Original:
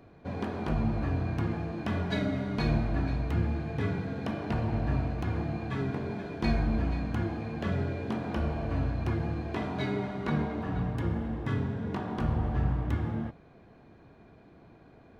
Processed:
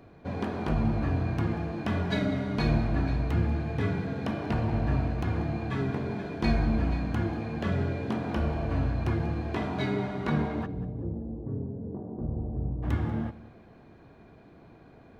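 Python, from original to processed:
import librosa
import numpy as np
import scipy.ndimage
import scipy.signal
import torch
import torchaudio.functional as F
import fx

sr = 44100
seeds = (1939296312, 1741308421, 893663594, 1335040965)

y = fx.ladder_lowpass(x, sr, hz=650.0, resonance_pct=25, at=(10.65, 12.82), fade=0.02)
y = fx.echo_feedback(y, sr, ms=190, feedback_pct=30, wet_db=-18)
y = F.gain(torch.from_numpy(y), 2.0).numpy()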